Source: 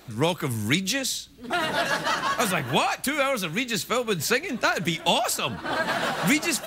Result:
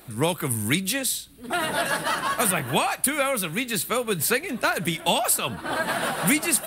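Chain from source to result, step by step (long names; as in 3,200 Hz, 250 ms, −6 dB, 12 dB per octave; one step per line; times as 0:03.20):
high shelf with overshoot 7,900 Hz +6.5 dB, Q 3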